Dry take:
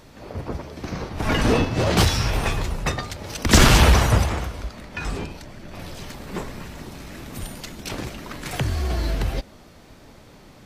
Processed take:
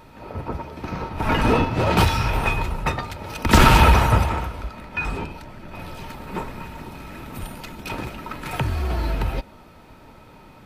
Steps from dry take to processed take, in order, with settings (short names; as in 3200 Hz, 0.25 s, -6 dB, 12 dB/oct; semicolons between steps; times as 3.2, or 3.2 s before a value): bell 6400 Hz -8.5 dB 1.2 oct; small resonant body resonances 920/1300/2500 Hz, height 13 dB, ringing for 65 ms